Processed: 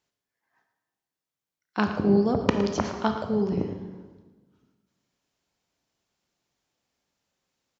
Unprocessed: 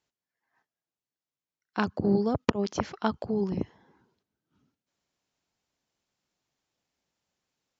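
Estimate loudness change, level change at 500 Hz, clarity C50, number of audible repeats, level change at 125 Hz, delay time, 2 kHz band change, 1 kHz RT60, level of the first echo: +4.0 dB, +4.0 dB, 6.0 dB, 1, +4.0 dB, 0.113 s, +3.0 dB, 1.3 s, -11.5 dB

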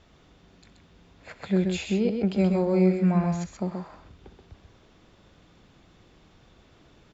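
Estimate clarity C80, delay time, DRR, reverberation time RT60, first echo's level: none, 64 ms, none, none, -17.5 dB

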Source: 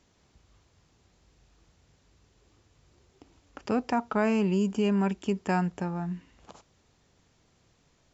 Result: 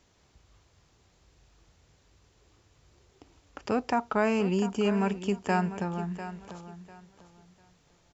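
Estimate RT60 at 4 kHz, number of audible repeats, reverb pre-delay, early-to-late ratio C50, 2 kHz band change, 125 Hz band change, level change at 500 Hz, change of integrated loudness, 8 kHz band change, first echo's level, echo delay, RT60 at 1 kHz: none, 2, none, none, +1.5 dB, -1.5 dB, +1.0 dB, -0.5 dB, n/a, -12.5 dB, 0.697 s, none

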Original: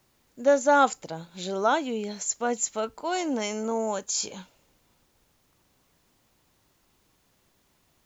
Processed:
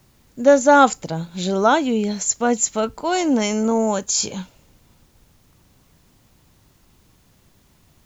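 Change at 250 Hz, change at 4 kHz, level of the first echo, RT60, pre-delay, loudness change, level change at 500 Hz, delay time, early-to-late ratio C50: +11.5 dB, +7.5 dB, none, none, none, +8.0 dB, +7.5 dB, none, none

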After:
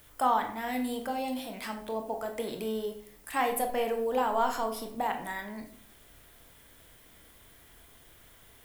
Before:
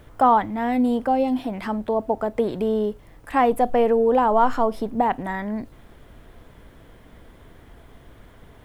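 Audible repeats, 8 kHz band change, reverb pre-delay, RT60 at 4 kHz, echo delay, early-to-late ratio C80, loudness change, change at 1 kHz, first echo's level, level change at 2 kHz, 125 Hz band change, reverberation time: none, n/a, 19 ms, 0.40 s, none, 12.5 dB, -10.0 dB, -9.5 dB, none, -4.5 dB, under -10 dB, 0.60 s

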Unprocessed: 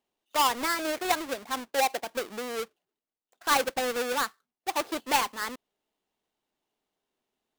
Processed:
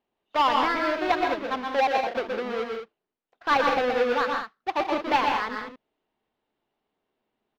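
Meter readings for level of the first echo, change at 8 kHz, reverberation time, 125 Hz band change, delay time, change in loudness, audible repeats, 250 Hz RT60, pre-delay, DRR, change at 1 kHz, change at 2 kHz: -5.0 dB, under -15 dB, none, +6.0 dB, 0.122 s, +3.5 dB, 3, none, none, none, +5.0 dB, +3.5 dB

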